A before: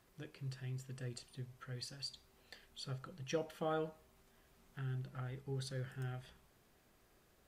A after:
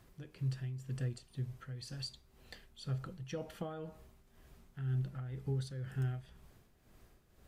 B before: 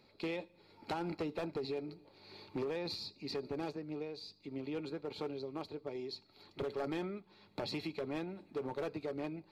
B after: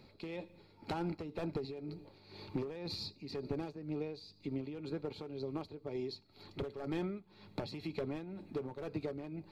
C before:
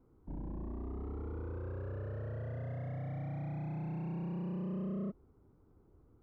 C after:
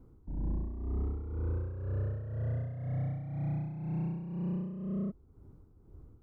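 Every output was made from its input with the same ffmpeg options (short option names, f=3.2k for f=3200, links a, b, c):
-af "acompressor=threshold=-43dB:ratio=2,tremolo=f=2:d=0.62,lowshelf=f=200:g=11,volume=3.5dB"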